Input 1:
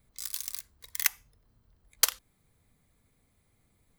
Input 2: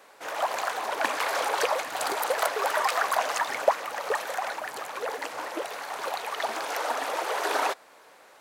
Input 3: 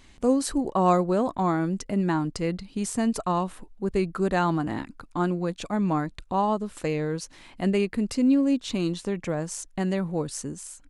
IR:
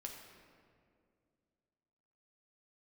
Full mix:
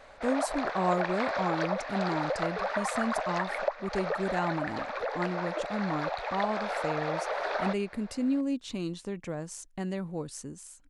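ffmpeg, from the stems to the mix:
-filter_complex "[0:a]adelay=1900,volume=-9.5dB[link_01];[1:a]volume=1.5dB[link_02];[2:a]volume=-7.5dB[link_03];[link_01][link_02]amix=inputs=2:normalize=0,highpass=500,equalizer=frequency=590:width_type=q:width=4:gain=8,equalizer=frequency=1000:width_type=q:width=4:gain=-4,equalizer=frequency=3000:width_type=q:width=4:gain=-9,lowpass=frequency=4300:width=0.5412,lowpass=frequency=4300:width=1.3066,acompressor=threshold=-30dB:ratio=3,volume=0dB[link_04];[link_03][link_04]amix=inputs=2:normalize=0"

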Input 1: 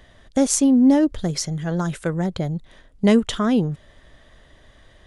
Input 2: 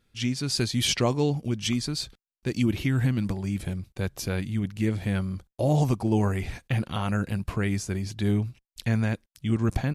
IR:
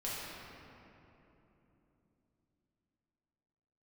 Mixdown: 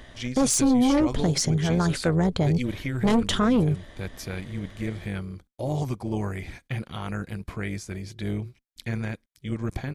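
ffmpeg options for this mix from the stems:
-filter_complex "[0:a]aeval=exprs='0.841*sin(PI/2*3.16*val(0)/0.841)':channel_layout=same,volume=-7.5dB[link_01];[1:a]equalizer=frequency=2400:width=1.6:gain=6,bandreject=frequency=2700:width=5.5,volume=-3dB[link_02];[link_01][link_02]amix=inputs=2:normalize=0,tremolo=f=250:d=0.519,alimiter=limit=-14dB:level=0:latency=1:release=29"

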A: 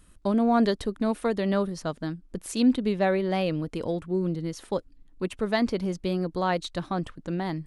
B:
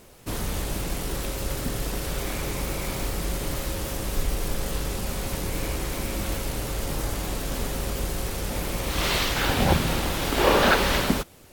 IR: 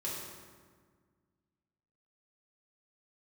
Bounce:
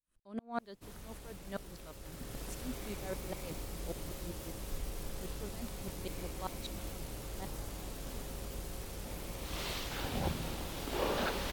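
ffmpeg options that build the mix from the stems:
-filter_complex "[0:a]lowshelf=frequency=420:gain=-6.5,aeval=exprs='val(0)*pow(10,-37*if(lt(mod(-5.1*n/s,1),2*abs(-5.1)/1000),1-mod(-5.1*n/s,1)/(2*abs(-5.1)/1000),(mod(-5.1*n/s,1)-2*abs(-5.1)/1000)/(1-2*abs(-5.1)/1000))/20)':channel_layout=same,volume=-7dB[link_01];[1:a]adelay=550,volume=-14dB,afade=type=in:start_time=2.01:duration=0.44:silence=0.446684[link_02];[link_01][link_02]amix=inputs=2:normalize=0,adynamicequalizer=threshold=0.002:dfrequency=1700:dqfactor=1:tfrequency=1700:tqfactor=1:attack=5:release=100:ratio=0.375:range=2:mode=cutabove:tftype=bell"

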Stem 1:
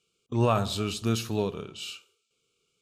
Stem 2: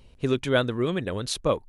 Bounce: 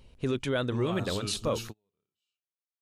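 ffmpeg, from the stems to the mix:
ffmpeg -i stem1.wav -i stem2.wav -filter_complex "[0:a]alimiter=limit=-21.5dB:level=0:latency=1:release=58,adelay=400,volume=-4dB[link_01];[1:a]volume=-2.5dB,asplit=2[link_02][link_03];[link_03]apad=whole_len=141801[link_04];[link_01][link_04]sidechaingate=range=-44dB:threshold=-43dB:ratio=16:detection=peak[link_05];[link_05][link_02]amix=inputs=2:normalize=0,alimiter=limit=-19.5dB:level=0:latency=1:release=11" out.wav

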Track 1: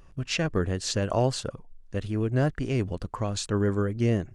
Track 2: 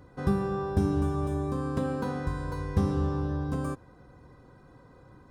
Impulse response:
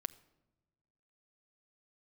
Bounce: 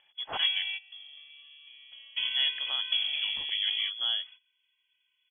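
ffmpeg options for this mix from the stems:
-filter_complex "[0:a]volume=-4dB,asplit=3[link_01][link_02][link_03];[link_01]atrim=end=0.63,asetpts=PTS-STARTPTS,afade=type=out:start_time=0.626:duration=0.004:curve=hsin[link_04];[link_02]atrim=start=0.63:end=2.16,asetpts=PTS-STARTPTS,volume=0[link_05];[link_03]atrim=start=2.16,asetpts=PTS-STARTPTS,afade=type=in:duration=0.004:curve=hsin[link_06];[link_04][link_05][link_06]concat=n=3:v=0:a=1,asplit=2[link_07][link_08];[1:a]equalizer=frequency=160:width_type=o:width=0.67:gain=-5,equalizer=frequency=400:width_type=o:width=0.67:gain=-11,equalizer=frequency=1600:width_type=o:width=0.67:gain=-5,adelay=150,volume=2.5dB[link_09];[link_08]apad=whole_len=240623[link_10];[link_09][link_10]sidechaingate=range=-18dB:threshold=-47dB:ratio=16:detection=peak[link_11];[link_07][link_11]amix=inputs=2:normalize=0,highpass=frequency=120:width=0.5412,highpass=frequency=120:width=1.3066,equalizer=frequency=370:width_type=o:width=0.25:gain=-15,lowpass=frequency=3000:width_type=q:width=0.5098,lowpass=frequency=3000:width_type=q:width=0.6013,lowpass=frequency=3000:width_type=q:width=0.9,lowpass=frequency=3000:width_type=q:width=2.563,afreqshift=-3500"

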